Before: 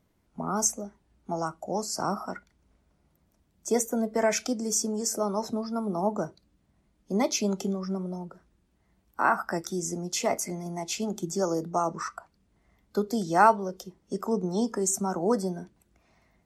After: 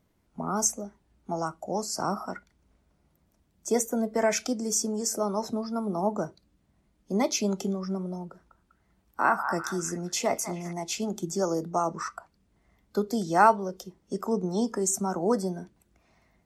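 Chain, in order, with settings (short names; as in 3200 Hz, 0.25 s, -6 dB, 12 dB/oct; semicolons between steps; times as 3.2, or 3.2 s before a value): 8.26–10.73 delay with a stepping band-pass 0.198 s, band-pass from 1100 Hz, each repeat 0.7 oct, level -7 dB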